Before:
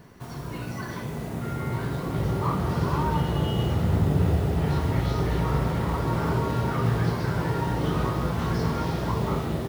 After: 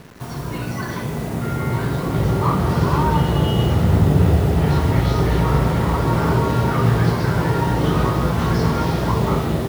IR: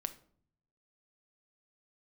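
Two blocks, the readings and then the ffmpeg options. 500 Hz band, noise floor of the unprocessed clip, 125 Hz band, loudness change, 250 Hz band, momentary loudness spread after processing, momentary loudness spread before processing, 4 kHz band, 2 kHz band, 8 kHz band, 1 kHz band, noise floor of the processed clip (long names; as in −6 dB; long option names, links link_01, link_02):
+7.5 dB, −35 dBFS, +7.5 dB, +7.5 dB, +7.5 dB, 10 LU, 10 LU, +7.5 dB, +7.5 dB, +8.0 dB, +7.5 dB, −28 dBFS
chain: -af "acrusher=bits=7:mix=0:aa=0.5,volume=7.5dB"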